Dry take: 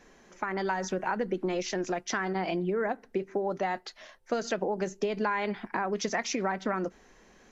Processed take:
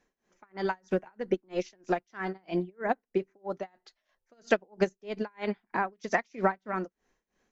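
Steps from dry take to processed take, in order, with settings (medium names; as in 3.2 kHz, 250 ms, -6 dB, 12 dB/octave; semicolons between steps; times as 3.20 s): tremolo 3.1 Hz, depth 91%; upward expansion 2.5:1, over -42 dBFS; trim +8.5 dB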